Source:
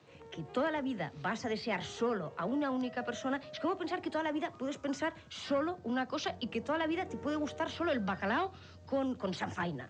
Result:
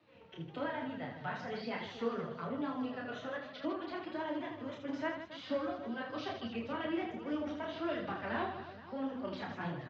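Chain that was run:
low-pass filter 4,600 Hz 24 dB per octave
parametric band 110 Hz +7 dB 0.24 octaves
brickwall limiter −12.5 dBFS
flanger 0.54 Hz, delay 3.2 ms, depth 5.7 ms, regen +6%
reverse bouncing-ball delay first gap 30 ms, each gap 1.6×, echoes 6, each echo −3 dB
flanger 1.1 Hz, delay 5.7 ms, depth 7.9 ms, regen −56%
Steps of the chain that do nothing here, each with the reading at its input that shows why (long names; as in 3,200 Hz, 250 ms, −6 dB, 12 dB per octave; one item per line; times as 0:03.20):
brickwall limiter −12.5 dBFS: peak of its input −20.5 dBFS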